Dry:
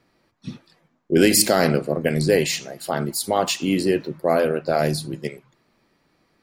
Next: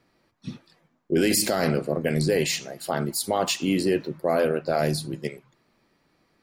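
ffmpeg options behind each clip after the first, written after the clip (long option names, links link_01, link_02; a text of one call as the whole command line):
ffmpeg -i in.wav -af "alimiter=limit=-10.5dB:level=0:latency=1:release=11,volume=-2dB" out.wav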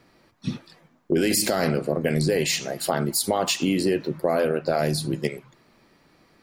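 ffmpeg -i in.wav -af "acompressor=threshold=-29dB:ratio=3,volume=8dB" out.wav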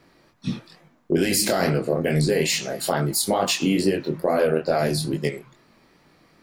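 ffmpeg -i in.wav -af "flanger=delay=20:depth=5.4:speed=2.3,volume=4.5dB" out.wav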